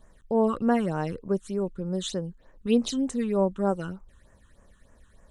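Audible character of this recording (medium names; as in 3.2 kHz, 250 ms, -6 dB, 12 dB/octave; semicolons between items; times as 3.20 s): phasing stages 8, 3.3 Hz, lowest notch 630–4100 Hz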